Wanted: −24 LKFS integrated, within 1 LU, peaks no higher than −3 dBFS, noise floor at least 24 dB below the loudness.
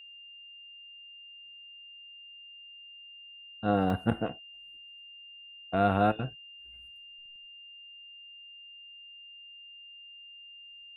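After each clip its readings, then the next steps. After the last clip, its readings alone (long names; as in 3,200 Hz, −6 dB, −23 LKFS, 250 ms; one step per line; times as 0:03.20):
number of dropouts 1; longest dropout 1.4 ms; interfering tone 2,800 Hz; level of the tone −47 dBFS; integrated loudness −29.5 LKFS; sample peak −11.5 dBFS; target loudness −24.0 LKFS
→ repair the gap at 0:03.90, 1.4 ms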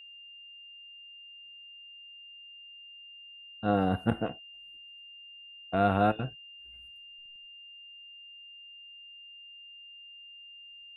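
number of dropouts 0; interfering tone 2,800 Hz; level of the tone −47 dBFS
→ notch filter 2,800 Hz, Q 30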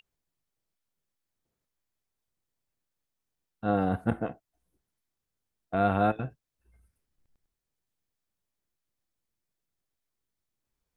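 interfering tone none found; integrated loudness −29.5 LKFS; sample peak −12.0 dBFS; target loudness −24.0 LKFS
→ level +5.5 dB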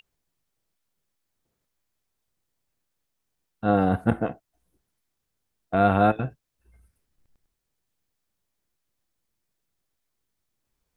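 integrated loudness −24.0 LKFS; sample peak −6.5 dBFS; background noise floor −80 dBFS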